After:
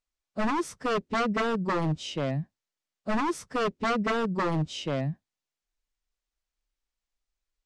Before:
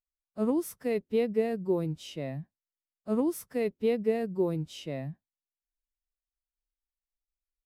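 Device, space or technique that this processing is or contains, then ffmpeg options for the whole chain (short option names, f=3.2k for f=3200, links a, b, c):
synthesiser wavefolder: -af "aeval=exprs='0.0376*(abs(mod(val(0)/0.0376+3,4)-2)-1)':c=same,lowpass=f=7.8k:w=0.5412,lowpass=f=7.8k:w=1.3066,volume=7.5dB"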